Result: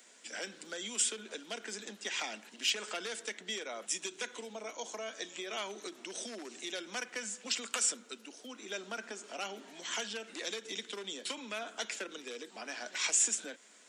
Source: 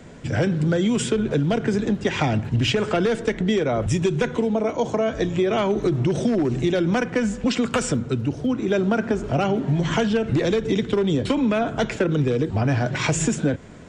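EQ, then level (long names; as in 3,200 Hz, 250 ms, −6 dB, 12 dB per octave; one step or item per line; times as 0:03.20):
elliptic high-pass filter 200 Hz, stop band 40 dB
first difference
+1.5 dB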